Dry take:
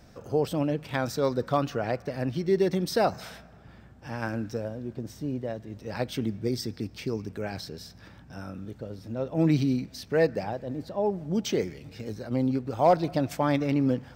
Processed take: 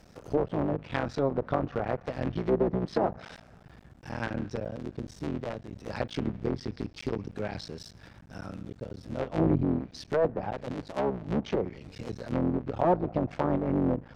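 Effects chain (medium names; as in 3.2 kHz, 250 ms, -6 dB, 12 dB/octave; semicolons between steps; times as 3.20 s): cycle switcher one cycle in 3, muted; low-pass that closes with the level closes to 870 Hz, closed at -23 dBFS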